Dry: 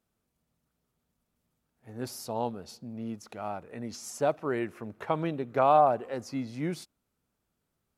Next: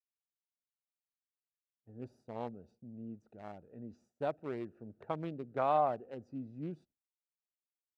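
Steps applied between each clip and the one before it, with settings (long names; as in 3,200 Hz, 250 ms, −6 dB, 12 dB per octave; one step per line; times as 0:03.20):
adaptive Wiener filter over 41 samples
downward expander −51 dBFS
low-pass filter 9,600 Hz 12 dB per octave
level −8 dB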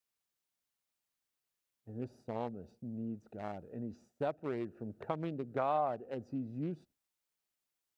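downward compressor 2 to 1, threshold −45 dBFS, peak gain reduction 11 dB
level +7.5 dB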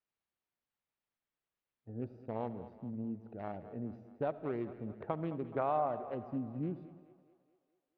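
high-frequency loss of the air 350 metres
echo with a time of its own for lows and highs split 370 Hz, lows 99 ms, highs 213 ms, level −14.5 dB
comb and all-pass reverb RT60 1.3 s, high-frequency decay 0.85×, pre-delay 30 ms, DRR 16 dB
level +1 dB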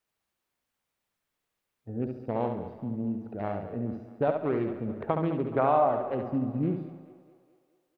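repeating echo 69 ms, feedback 30%, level −6 dB
level +8.5 dB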